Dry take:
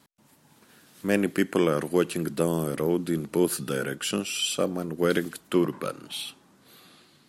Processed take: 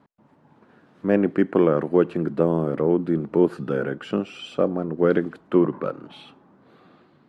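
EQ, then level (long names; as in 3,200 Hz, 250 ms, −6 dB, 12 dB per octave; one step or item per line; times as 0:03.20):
low-pass filter 1,000 Hz 12 dB per octave
spectral tilt +2 dB per octave
low-shelf EQ 380 Hz +3 dB
+6.5 dB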